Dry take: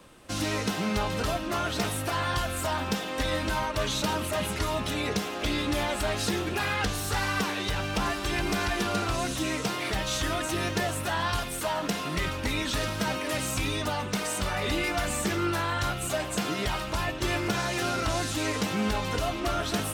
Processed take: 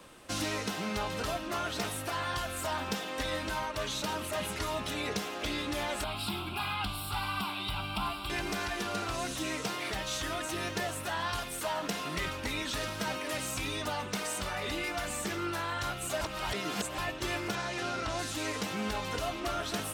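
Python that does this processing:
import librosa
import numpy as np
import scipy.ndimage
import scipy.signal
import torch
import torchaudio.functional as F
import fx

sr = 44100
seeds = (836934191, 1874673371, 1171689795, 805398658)

y = fx.fixed_phaser(x, sr, hz=1800.0, stages=6, at=(6.04, 8.3))
y = fx.air_absorb(y, sr, metres=52.0, at=(17.55, 18.19))
y = fx.edit(y, sr, fx.reverse_span(start_s=16.21, length_s=0.77), tone=tone)
y = fx.low_shelf(y, sr, hz=270.0, db=-5.5)
y = fx.rider(y, sr, range_db=10, speed_s=0.5)
y = F.gain(torch.from_numpy(y), -4.0).numpy()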